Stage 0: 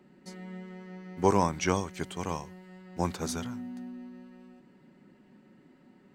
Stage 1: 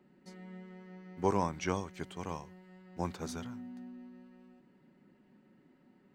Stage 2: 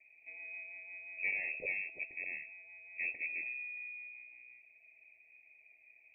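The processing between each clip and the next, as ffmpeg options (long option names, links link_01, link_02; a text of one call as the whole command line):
ffmpeg -i in.wav -af "equalizer=frequency=10000:width_type=o:width=1.7:gain=-5.5,volume=-6dB" out.wav
ffmpeg -i in.wav -af "volume=32dB,asoftclip=hard,volume=-32dB,asuperstop=centerf=1300:order=12:qfactor=1.1,lowpass=frequency=2300:width_type=q:width=0.5098,lowpass=frequency=2300:width_type=q:width=0.6013,lowpass=frequency=2300:width_type=q:width=0.9,lowpass=frequency=2300:width_type=q:width=2.563,afreqshift=-2700,volume=1.5dB" out.wav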